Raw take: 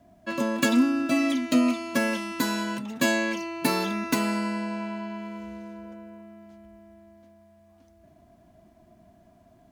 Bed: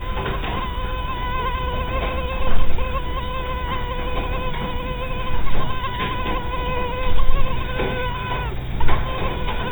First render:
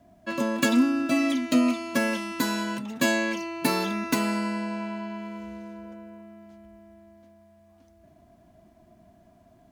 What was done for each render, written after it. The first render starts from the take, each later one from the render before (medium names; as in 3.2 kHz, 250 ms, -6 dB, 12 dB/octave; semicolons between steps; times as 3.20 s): no audible change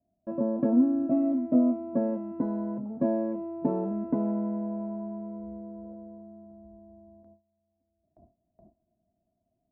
Chebyshev low-pass 680 Hz, order 3; gate with hold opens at -46 dBFS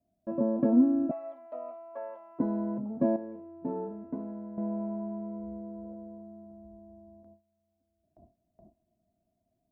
1.11–2.39 s: high-pass 720 Hz 24 dB/octave; 3.16–4.58 s: feedback comb 88 Hz, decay 0.44 s, mix 80%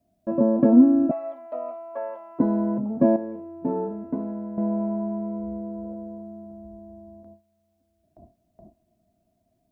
trim +8 dB